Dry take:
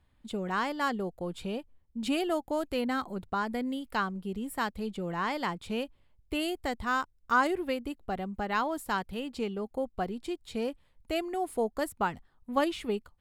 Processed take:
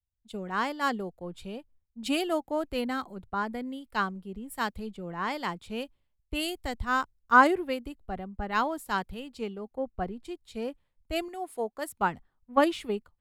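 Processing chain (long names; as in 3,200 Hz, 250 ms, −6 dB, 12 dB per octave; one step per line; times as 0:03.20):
0:11.28–0:11.89: low-shelf EQ 280 Hz −9.5 dB
multiband upward and downward expander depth 100%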